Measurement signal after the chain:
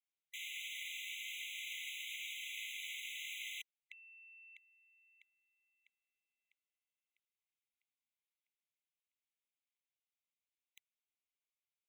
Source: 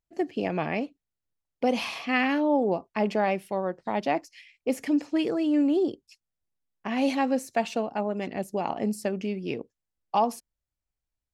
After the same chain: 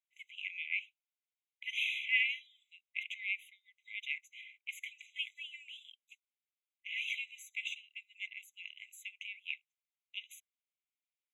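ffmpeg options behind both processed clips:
-af "bass=f=250:g=12,treble=f=4k:g=-12,aeval=exprs='0.282*(cos(1*acos(clip(val(0)/0.282,-1,1)))-cos(1*PI/2))+0.00708*(cos(2*acos(clip(val(0)/0.282,-1,1)))-cos(2*PI/2))':c=same,afftfilt=real='re*eq(mod(floor(b*sr/1024/2000),2),1)':imag='im*eq(mod(floor(b*sr/1024/2000),2),1)':win_size=1024:overlap=0.75,volume=3dB"

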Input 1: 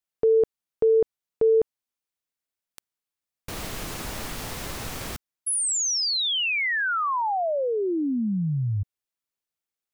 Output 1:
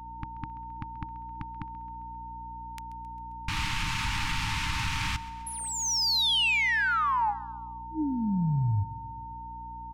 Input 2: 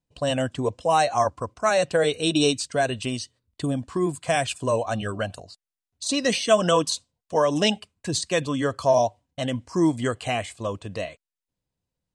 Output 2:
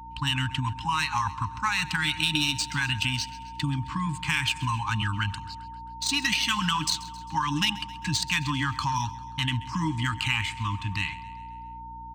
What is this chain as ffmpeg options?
-filter_complex "[0:a]afftfilt=real='re*(1-between(b*sr/4096,320,810))':imag='im*(1-between(b*sr/4096,320,810))':win_size=4096:overlap=0.75,equalizer=f=100:t=o:w=0.67:g=3,equalizer=f=250:t=o:w=0.67:g=-10,equalizer=f=2.5k:t=o:w=0.67:g=6,acompressor=threshold=-32dB:ratio=10:attack=51:release=55:knee=6:detection=rms,aeval=exprs='val(0)+0.00501*sin(2*PI*910*n/s)':c=same,adynamicsmooth=sensitivity=3.5:basefreq=4k,aeval=exprs='val(0)+0.00251*(sin(2*PI*60*n/s)+sin(2*PI*2*60*n/s)/2+sin(2*PI*3*60*n/s)/3+sin(2*PI*4*60*n/s)/4+sin(2*PI*5*60*n/s)/5)':c=same,asplit=2[a][b];[b]aecho=0:1:133|266|399|532|665:0.126|0.073|0.0424|0.0246|0.0142[c];[a][c]amix=inputs=2:normalize=0,adynamicequalizer=threshold=0.00708:dfrequency=2700:dqfactor=0.7:tfrequency=2700:tqfactor=0.7:attack=5:release=100:ratio=0.417:range=1.5:mode=boostabove:tftype=highshelf,volume=5.5dB"

